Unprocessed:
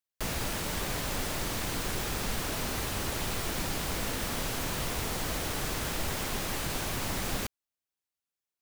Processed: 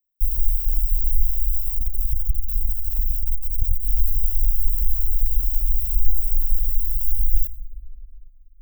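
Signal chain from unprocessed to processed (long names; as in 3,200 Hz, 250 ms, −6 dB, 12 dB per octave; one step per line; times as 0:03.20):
inverse Chebyshev band-stop filter 250–5,900 Hz, stop band 80 dB
bass and treble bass +14 dB, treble +12 dB
rectangular room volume 2,200 cubic metres, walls mixed, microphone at 0.6 metres
0:01.58–0:03.85: saturating transformer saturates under 61 Hz
level +7.5 dB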